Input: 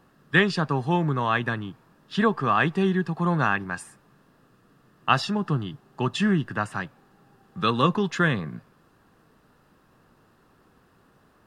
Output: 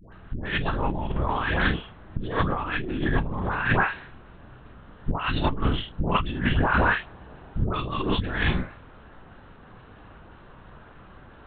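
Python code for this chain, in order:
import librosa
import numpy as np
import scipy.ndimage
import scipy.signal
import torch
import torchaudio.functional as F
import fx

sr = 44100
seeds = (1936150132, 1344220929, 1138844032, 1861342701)

p1 = fx.lpc_vocoder(x, sr, seeds[0], excitation='whisper', order=8)
p2 = fx.dispersion(p1, sr, late='highs', ms=126.0, hz=870.0)
p3 = p2 + fx.room_early_taps(p2, sr, ms=(32, 48, 78), db=(-7.5, -6.5, -12.5), dry=0)
p4 = fx.over_compress(p3, sr, threshold_db=-30.0, ratio=-1.0)
y = F.gain(torch.from_numpy(p4), 4.5).numpy()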